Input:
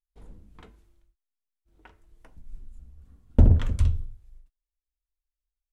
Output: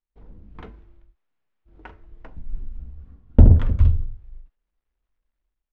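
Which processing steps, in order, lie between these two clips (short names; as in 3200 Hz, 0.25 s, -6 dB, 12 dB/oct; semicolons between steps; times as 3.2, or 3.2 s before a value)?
median filter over 9 samples; dynamic EQ 2300 Hz, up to -3 dB, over -50 dBFS, Q 0.76; AGC gain up to 11.5 dB; air absorption 190 m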